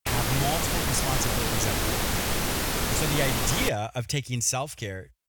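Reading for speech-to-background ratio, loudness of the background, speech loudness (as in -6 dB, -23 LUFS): -3.0 dB, -26.5 LUFS, -29.5 LUFS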